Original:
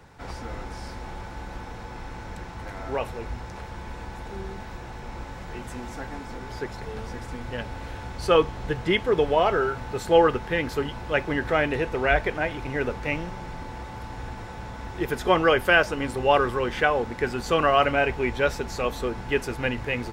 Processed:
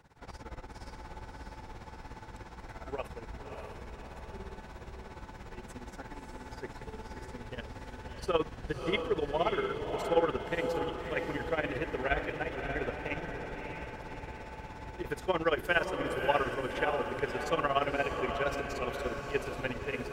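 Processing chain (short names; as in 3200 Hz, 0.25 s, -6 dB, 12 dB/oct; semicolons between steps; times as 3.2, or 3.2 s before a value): tremolo 17 Hz, depth 87%; diffused feedback echo 0.606 s, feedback 54%, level -5.5 dB; gain -6.5 dB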